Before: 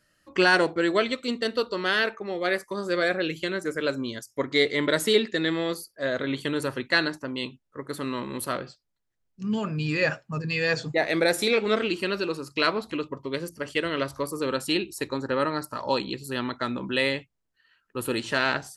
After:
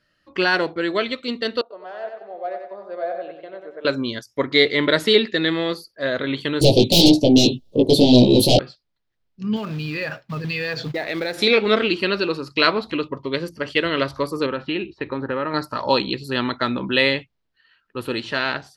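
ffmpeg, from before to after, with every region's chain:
ffmpeg -i in.wav -filter_complex "[0:a]asettb=1/sr,asplit=3[link_01][link_02][link_03];[link_01]atrim=end=1.614[link_04];[link_02]atrim=start=1.61:end=3.85,asetpts=PTS-STARTPTS,afade=type=in:duration=0.004:curve=qsin,afade=type=out:start_time=2.236:duration=0.004:curve=qsin,aeval=exprs='0.168*(abs(mod(val(0)/0.168+3,4)-2)-1)':channel_layout=same,bandpass=frequency=680:width_type=q:width=6.3,aecho=1:1:94|188|282|376|470:0.501|0.21|0.0884|0.0371|0.0156,atrim=end_sample=98784[link_05];[link_03]atrim=start=3.846[link_06];[link_04][link_05]acrossfade=duration=0.004:curve1=hsin:curve2=qsin[link_07];[link_07][link_06]acrossfade=duration=0.004:curve1=qsin:curve2=hsin,asettb=1/sr,asplit=3[link_08][link_09][link_10];[link_08]atrim=end=6.614[link_11];[link_09]atrim=start=6.61:end=8.59,asetpts=PTS-STARTPTS,afade=type=in:duration=0.004:curve=qsin,afade=type=out:start_time=1.976:duration=0.004:curve=qsin,aeval=exprs='0.398*sin(PI/2*8.91*val(0)/0.398)':channel_layout=same,flanger=delay=16:depth=2.7:speed=1.9,asuperstop=centerf=1500:order=8:qfactor=0.62[link_12];[link_10]atrim=start=8.586[link_13];[link_11][link_12]acrossfade=duration=0.004:curve1=hsin:curve2=qsin[link_14];[link_14][link_13]acrossfade=duration=0.004:curve1=qsin:curve2=hsin,asettb=1/sr,asplit=3[link_15][link_16][link_17];[link_15]atrim=end=9.564[link_18];[link_16]atrim=start=9.56:end=11.38,asetpts=PTS-STARTPTS,afade=type=in:duration=0.004:curve=qsin,afade=type=out:start_time=1.816:duration=0.004:curve=qsin,acompressor=threshold=-29dB:ratio=4:attack=3.2:release=140:knee=1:detection=peak,acrusher=bits=4:mode=log:mix=0:aa=0.000001[link_19];[link_17]atrim=start=11.376[link_20];[link_18][link_19]acrossfade=duration=0.004:curve1=hsin:curve2=qsin[link_21];[link_21][link_20]acrossfade=duration=0.004:curve1=qsin:curve2=hsin,asettb=1/sr,asplit=3[link_22][link_23][link_24];[link_22]atrim=end=14.464[link_25];[link_23]atrim=start=14.46:end=15.54,asetpts=PTS-STARTPTS,afade=type=in:duration=0.004:curve=qsin,afade=type=out:start_time=1.076:duration=0.004:curve=qsin,lowpass=frequency=2900:width=0.5412,lowpass=frequency=2900:width=1.3066,acompressor=threshold=-29dB:ratio=2.5:attack=3.2:release=140:knee=1:detection=peak[link_26];[link_24]atrim=start=15.536[link_27];[link_25][link_26]acrossfade=duration=0.004:curve1=hsin:curve2=qsin[link_28];[link_28][link_27]acrossfade=duration=0.004:curve1=qsin:curve2=hsin,highshelf=frequency=5800:width_type=q:width=1.5:gain=-10.5,dynaudnorm=framelen=450:gausssize=7:maxgain=8dB" out.wav

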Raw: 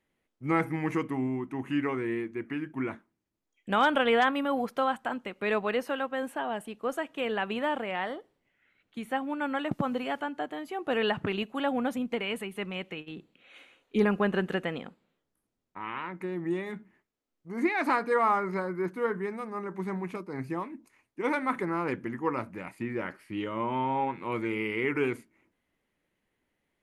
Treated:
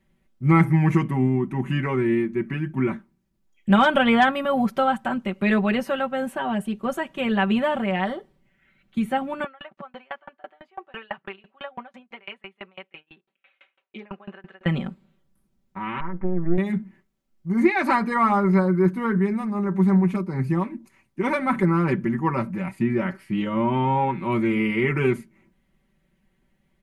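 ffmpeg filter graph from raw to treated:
ffmpeg -i in.wav -filter_complex "[0:a]asettb=1/sr,asplit=3[link_01][link_02][link_03];[link_01]atrim=end=9.444[link_04];[link_02]atrim=start=9.44:end=14.66,asetpts=PTS-STARTPTS,afade=type=in:duration=0.004:curve=qsin,afade=type=out:start_time=5.216:duration=0.004:curve=qsin,highpass=710,lowpass=2700,aeval=exprs='val(0)*pow(10,-32*if(lt(mod(6*n/s,1),2*abs(6)/1000),1-mod(6*n/s,1)/(2*abs(6)/1000),(mod(6*n/s,1)-2*abs(6)/1000)/(1-2*abs(6)/1000))/20)':channel_layout=same[link_05];[link_03]atrim=start=14.656[link_06];[link_04][link_05]acrossfade=duration=0.004:curve1=hsin:curve2=qsin[link_07];[link_07][link_06]acrossfade=duration=0.004:curve1=qsin:curve2=hsin,asettb=1/sr,asplit=3[link_08][link_09][link_10];[link_08]atrim=end=16.004[link_11];[link_09]atrim=start=16:end=16.58,asetpts=PTS-STARTPTS,afade=type=in:duration=0.004:curve=qsin,afade=type=out:start_time=0.576:duration=0.004:curve=qsin,aeval=exprs='if(lt(val(0),0),0.251*val(0),val(0))':channel_layout=same,lowpass=frequency=1600:width=0.5412,lowpass=frequency=1600:width=1.3066,equalizer=frequency=130:width_type=o:width=0.57:gain=-13[link_12];[link_10]atrim=start=16.576[link_13];[link_11][link_12]acrossfade=duration=0.004:curve1=hsin:curve2=qsin[link_14];[link_14][link_13]acrossfade=duration=0.004:curve1=qsin:curve2=hsin,bass=frequency=250:gain=13,treble=frequency=4000:gain=-1,bandreject=frequency=420:width=12,aecho=1:1:5.2:0.78,volume=3.5dB" out.wav

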